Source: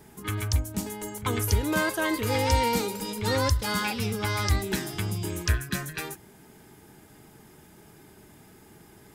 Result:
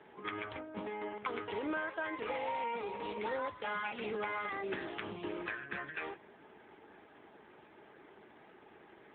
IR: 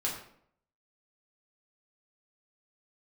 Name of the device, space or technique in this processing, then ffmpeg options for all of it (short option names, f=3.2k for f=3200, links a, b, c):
voicemail: -filter_complex "[0:a]asplit=3[a][b][c];[a]afade=t=out:st=1.86:d=0.02[d];[b]equalizer=f=300:w=0.58:g=-2.5,afade=t=in:st=1.86:d=0.02,afade=t=out:st=3.02:d=0.02[e];[c]afade=t=in:st=3.02:d=0.02[f];[d][e][f]amix=inputs=3:normalize=0,highpass=400,lowpass=3k,acompressor=threshold=-34dB:ratio=8,volume=1dB" -ar 8000 -c:a libopencore_amrnb -b:a 7950